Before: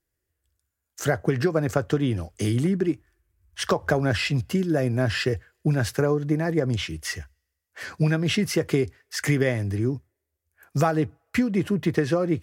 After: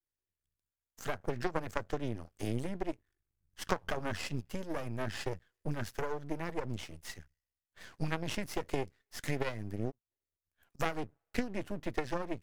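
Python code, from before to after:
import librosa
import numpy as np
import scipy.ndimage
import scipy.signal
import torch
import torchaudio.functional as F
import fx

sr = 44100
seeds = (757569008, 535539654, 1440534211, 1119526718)

y = fx.gate_flip(x, sr, shuts_db=-35.0, range_db=-30, at=(9.9, 10.79), fade=0.02)
y = fx.cheby_harmonics(y, sr, harmonics=(3, 6), levels_db=(-12, -37), full_scale_db=-7.5)
y = np.maximum(y, 0.0)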